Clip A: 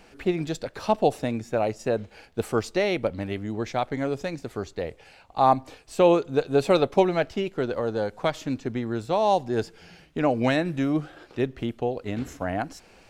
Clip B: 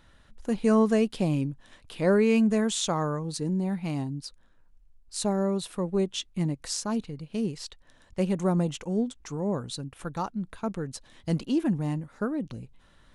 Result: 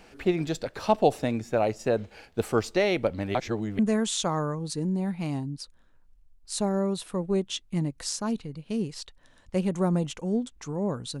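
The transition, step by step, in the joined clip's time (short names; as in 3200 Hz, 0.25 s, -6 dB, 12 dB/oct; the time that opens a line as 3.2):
clip A
3.35–3.79 reverse
3.79 switch to clip B from 2.43 s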